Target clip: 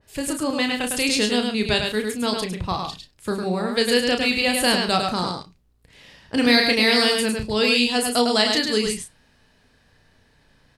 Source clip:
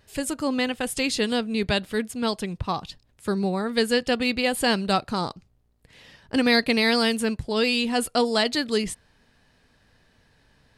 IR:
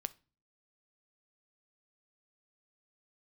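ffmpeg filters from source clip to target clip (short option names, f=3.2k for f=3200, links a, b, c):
-filter_complex "[0:a]asplit=2[a][b];[b]adelay=33,volume=-6.5dB[c];[a][c]amix=inputs=2:normalize=0,asplit=2[d][e];[1:a]atrim=start_sample=2205,atrim=end_sample=3969,adelay=104[f];[e][f]afir=irnorm=-1:irlink=0,volume=-3dB[g];[d][g]amix=inputs=2:normalize=0,adynamicequalizer=threshold=0.0251:dfrequency=2100:dqfactor=0.7:tfrequency=2100:tqfactor=0.7:attack=5:release=100:ratio=0.375:range=2:mode=boostabove:tftype=highshelf"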